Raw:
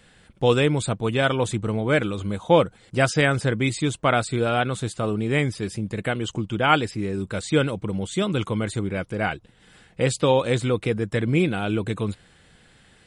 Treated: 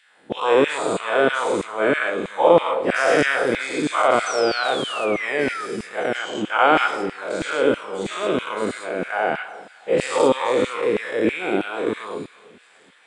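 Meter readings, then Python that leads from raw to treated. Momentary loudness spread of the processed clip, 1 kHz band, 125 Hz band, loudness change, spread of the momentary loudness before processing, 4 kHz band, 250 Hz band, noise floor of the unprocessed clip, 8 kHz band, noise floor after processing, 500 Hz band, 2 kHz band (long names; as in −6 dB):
10 LU, +5.5 dB, −14.0 dB, +2.5 dB, 9 LU, +1.0 dB, −1.0 dB, −56 dBFS, −0.5 dB, −53 dBFS, +4.0 dB, +4.5 dB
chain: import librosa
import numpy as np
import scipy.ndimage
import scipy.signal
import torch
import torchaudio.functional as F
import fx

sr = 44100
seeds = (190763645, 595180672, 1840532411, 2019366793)

p1 = fx.spec_dilate(x, sr, span_ms=240)
p2 = scipy.signal.sosfilt(scipy.signal.butter(2, 98.0, 'highpass', fs=sr, output='sos'), p1)
p3 = fx.high_shelf(p2, sr, hz=2100.0, db=-10.5)
p4 = fx.spec_paint(p3, sr, seeds[0], shape='fall', start_s=4.26, length_s=1.4, low_hz=1200.0, high_hz=6200.0, level_db=-31.0)
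p5 = fx.rev_plate(p4, sr, seeds[1], rt60_s=1.4, hf_ratio=0.8, predelay_ms=0, drr_db=9.0)
p6 = fx.filter_lfo_highpass(p5, sr, shape='saw_down', hz=3.1, low_hz=220.0, high_hz=2400.0, q=1.4)
p7 = p6 + fx.echo_wet_highpass(p6, sr, ms=871, feedback_pct=73, hz=2300.0, wet_db=-23.0, dry=0)
y = F.gain(torch.from_numpy(p7), -2.0).numpy()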